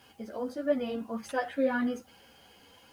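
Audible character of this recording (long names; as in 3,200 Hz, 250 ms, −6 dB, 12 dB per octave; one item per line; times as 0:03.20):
a quantiser's noise floor 12 bits, dither triangular
a shimmering, thickened sound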